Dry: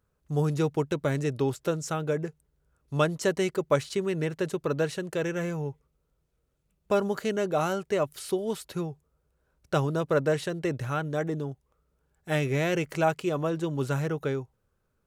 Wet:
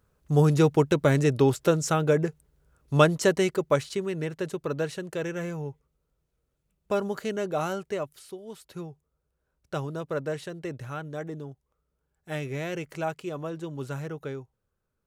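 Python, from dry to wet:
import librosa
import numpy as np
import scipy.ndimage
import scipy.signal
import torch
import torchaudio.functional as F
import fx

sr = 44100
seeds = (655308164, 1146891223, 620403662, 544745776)

y = fx.gain(x, sr, db=fx.line((2.98, 6.0), (4.11, -2.0), (7.85, -2.0), (8.38, -13.0), (8.8, -6.0)))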